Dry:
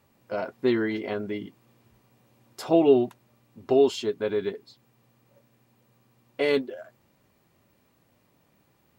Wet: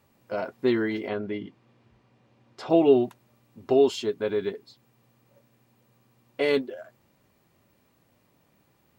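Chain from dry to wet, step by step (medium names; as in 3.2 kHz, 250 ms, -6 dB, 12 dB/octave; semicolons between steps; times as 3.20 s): 1.08–2.70 s: low-pass 4.2 kHz 12 dB/octave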